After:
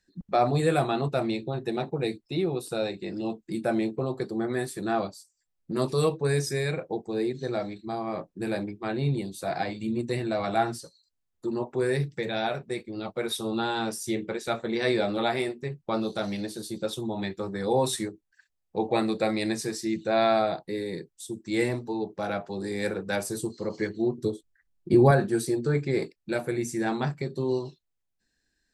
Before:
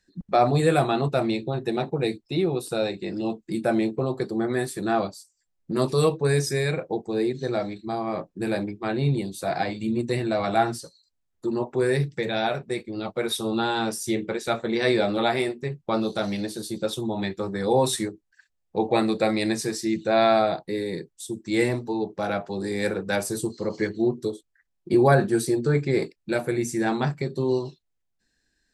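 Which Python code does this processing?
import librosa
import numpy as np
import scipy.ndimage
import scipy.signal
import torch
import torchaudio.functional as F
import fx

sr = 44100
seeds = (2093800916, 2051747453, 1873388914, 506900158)

y = fx.low_shelf(x, sr, hz=270.0, db=9.5, at=(24.18, 25.11))
y = y * librosa.db_to_amplitude(-3.5)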